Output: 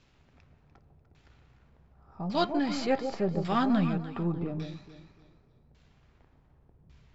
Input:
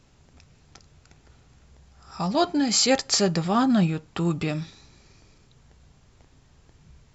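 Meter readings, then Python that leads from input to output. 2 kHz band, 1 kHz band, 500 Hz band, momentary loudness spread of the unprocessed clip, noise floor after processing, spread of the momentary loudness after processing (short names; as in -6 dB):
-7.0 dB, -4.5 dB, -5.0 dB, 10 LU, -64 dBFS, 12 LU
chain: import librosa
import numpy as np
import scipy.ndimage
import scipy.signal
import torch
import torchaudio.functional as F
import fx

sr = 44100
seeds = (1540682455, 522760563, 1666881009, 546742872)

y = np.where(x < 0.0, 10.0 ** (-3.0 / 20.0) * x, x)
y = fx.high_shelf(y, sr, hz=2000.0, db=8.5)
y = fx.filter_lfo_lowpass(y, sr, shape='saw_down', hz=0.87, low_hz=510.0, high_hz=3800.0, q=0.82)
y = fx.echo_alternate(y, sr, ms=148, hz=870.0, feedback_pct=53, wet_db=-6.5)
y = y * librosa.db_to_amplitude(-5.0)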